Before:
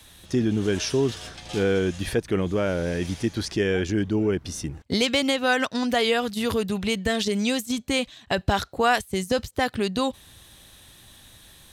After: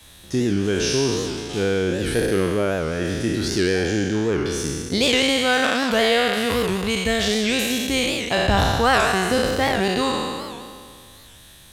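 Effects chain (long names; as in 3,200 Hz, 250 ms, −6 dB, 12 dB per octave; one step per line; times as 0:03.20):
peak hold with a decay on every bin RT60 2.08 s
wow of a warped record 78 rpm, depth 160 cents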